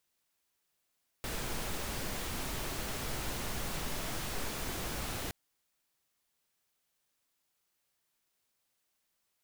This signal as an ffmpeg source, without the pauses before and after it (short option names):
-f lavfi -i "anoisesrc=c=pink:a=0.0724:d=4.07:r=44100:seed=1"